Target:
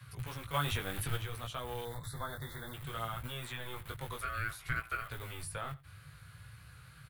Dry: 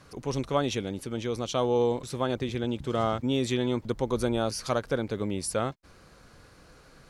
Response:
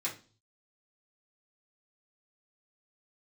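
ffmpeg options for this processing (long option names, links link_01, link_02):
-filter_complex "[0:a]highpass=frequency=74:width=0.5412,highpass=frequency=74:width=1.3066,acrossover=split=170[link_01][link_02];[link_01]aeval=exprs='(mod(112*val(0)+1,2)-1)/112':channel_layout=same[link_03];[link_03][link_02]amix=inputs=2:normalize=0,acrossover=split=400|1800|6900[link_04][link_05][link_06][link_07];[link_04]acompressor=threshold=-37dB:ratio=4[link_08];[link_05]acompressor=threshold=-29dB:ratio=4[link_09];[link_06]acompressor=threshold=-51dB:ratio=4[link_10];[link_07]acompressor=threshold=-52dB:ratio=4[link_11];[link_08][link_09][link_10][link_11]amix=inputs=4:normalize=0,flanger=delay=16.5:depth=4.3:speed=0.6,asplit=3[link_12][link_13][link_14];[link_12]afade=type=out:start_time=0.53:duration=0.02[link_15];[link_13]acontrast=87,afade=type=in:start_time=0.53:duration=0.02,afade=type=out:start_time=1.16:duration=0.02[link_16];[link_14]afade=type=in:start_time=1.16:duration=0.02[link_17];[link_15][link_16][link_17]amix=inputs=3:normalize=0,asettb=1/sr,asplit=3[link_18][link_19][link_20];[link_18]atrim=end=1.854[link_21];[link_19]atrim=start=1.85:end=2.74,asetpts=PTS-STARTPTS,afade=type=in:duration=0.004:curve=qsin,afade=type=out:start_time=0.886:duration=0.004:curve=qsin,asuperstop=centerf=2700:order=12:qfactor=2[link_22];[link_20]atrim=start=2.736[link_23];[link_21][link_22]acrossfade=duration=0.004:curve1=hsin:curve2=qsin[link_24];[link_24][link_23]acrossfade=duration=0.004:curve1=qsin:curve2=hsin,asettb=1/sr,asplit=3[link_25][link_26][link_27];[link_25]atrim=end=4.214[link_28];[link_26]atrim=start=4.21:end=5.1,asetpts=PTS-STARTPTS,afade=type=in:duration=0.004:curve=qsin,afade=type=out:start_time=0.886:duration=0.004:curve=qsin,aeval=exprs='val(0)*sin(2*PI*900*n/s)':channel_layout=same[link_29];[link_27]atrim=start=5.096[link_30];[link_28][link_29]acrossfade=duration=0.004:curve1=hsin:curve2=qsin[link_31];[link_31][link_30]acrossfade=duration=0.004:curve1=qsin:curve2=hsin,firequalizer=gain_entry='entry(140,0);entry(200,-26);entry(370,-27);entry(1400,-9);entry(3400,-8);entry(7200,-24)':delay=0.05:min_phase=1,asplit=2[link_32][link_33];[link_33]aecho=0:1:88:0.0944[link_34];[link_32][link_34]amix=inputs=2:normalize=0,aexciter=amount=10.3:drive=5.1:freq=8000,volume=12dB"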